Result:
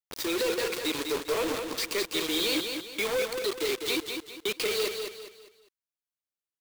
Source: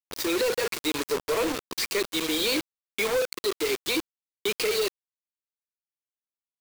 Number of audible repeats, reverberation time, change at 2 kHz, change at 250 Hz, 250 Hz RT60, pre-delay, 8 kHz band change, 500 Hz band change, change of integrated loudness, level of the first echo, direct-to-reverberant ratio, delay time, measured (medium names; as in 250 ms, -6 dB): 4, no reverb, -2.0 dB, -2.0 dB, no reverb, no reverb, -2.5 dB, -2.5 dB, -2.0 dB, -6.0 dB, no reverb, 201 ms